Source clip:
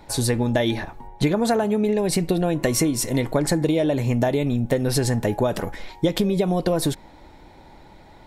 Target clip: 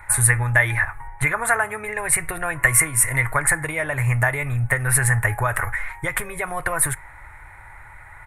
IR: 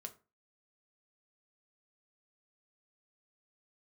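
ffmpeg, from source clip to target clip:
-filter_complex "[0:a]firequalizer=gain_entry='entry(120,0);entry(190,-27);entry(350,-19);entry(1200,8);entry(2000,11);entry(3100,-14);entry(4800,-22);entry(9400,10);entry(14000,-4)':delay=0.05:min_phase=1,asplit=2[a][b];[1:a]atrim=start_sample=2205,highshelf=f=10k:g=12[c];[b][c]afir=irnorm=-1:irlink=0,volume=-11.5dB[d];[a][d]amix=inputs=2:normalize=0,volume=4dB"

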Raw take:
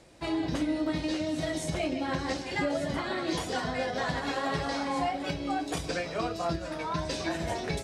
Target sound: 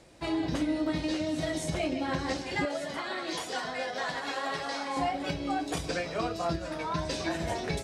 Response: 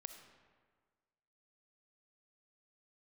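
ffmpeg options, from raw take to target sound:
-filter_complex "[0:a]asettb=1/sr,asplit=3[a][b][c];[a]atrim=end=2.654[d];[b]atrim=start=2.65:end=4.97,asetpts=PTS-STARTPTS,afade=t=in:d=0.004:c=qsin,afade=t=out:st=2.316:d=0.004:c=qsin,highpass=f=600:p=1[e];[c]atrim=start=4.966[f];[d][e]acrossfade=d=0.004:c1=hsin:c2=qsin[g];[g][f]acrossfade=d=0.004:c1=qsin:c2=hsin"

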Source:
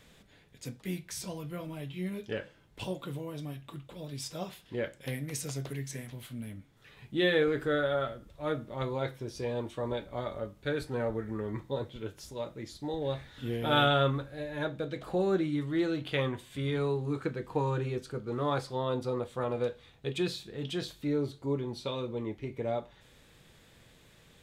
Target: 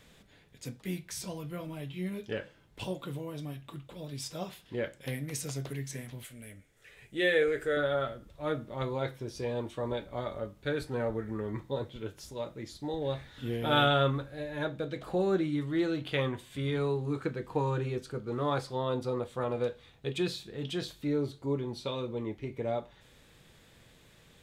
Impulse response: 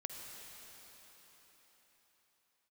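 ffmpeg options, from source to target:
-filter_complex "[0:a]asettb=1/sr,asplit=3[a][b][c];[a]atrim=end=6.244[d];[b]atrim=start=6.24:end=7.77,asetpts=PTS-STARTPTS,afade=t=in:d=0.004:c=qsin,afade=t=out:st=1.526:d=0.004:c=qsin,equalizer=f=125:t=o:w=1:g=-8,equalizer=f=250:t=o:w=1:g=-9,equalizer=f=500:t=o:w=1:g=5,equalizer=f=1k:t=o:w=1:g=-10,equalizer=f=2k:t=o:w=1:g=6,equalizer=f=4k:t=o:w=1:g=-6,equalizer=f=8k:t=o:w=1:g=8[e];[c]atrim=start=7.766[f];[d][e]acrossfade=d=0.004:c1=hsin:c2=qsin[g];[g][f]acrossfade=d=0.004:c1=qsin:c2=hsin"

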